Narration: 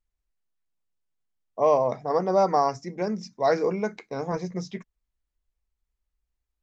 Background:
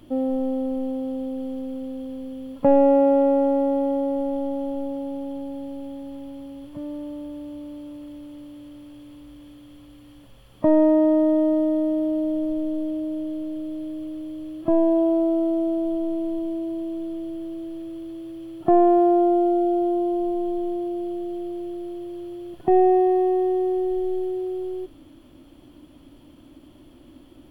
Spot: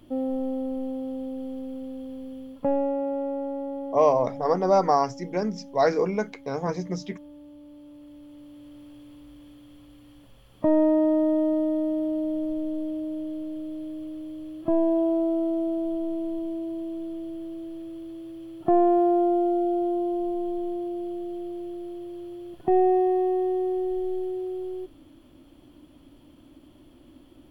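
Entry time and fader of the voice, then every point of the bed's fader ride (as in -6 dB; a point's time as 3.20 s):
2.35 s, +1.0 dB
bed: 2.37 s -4 dB
2.95 s -11 dB
7.59 s -11 dB
8.81 s -3.5 dB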